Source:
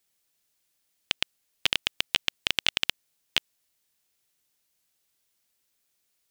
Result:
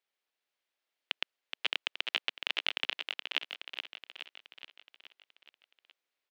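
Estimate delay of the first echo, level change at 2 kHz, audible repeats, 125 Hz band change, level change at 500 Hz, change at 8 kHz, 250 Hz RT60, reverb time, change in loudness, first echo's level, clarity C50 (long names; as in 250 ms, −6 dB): 422 ms, −4.5 dB, 6, below −20 dB, −4.5 dB, −18.0 dB, no reverb audible, no reverb audible, −7.0 dB, −6.5 dB, no reverb audible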